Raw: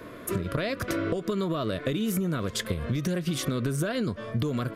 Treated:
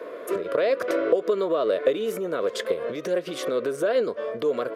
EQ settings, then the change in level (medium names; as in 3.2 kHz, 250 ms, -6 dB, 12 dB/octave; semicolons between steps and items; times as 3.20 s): resonant high-pass 480 Hz, resonance Q 3.4; treble shelf 4.9 kHz -10.5 dB; +2.0 dB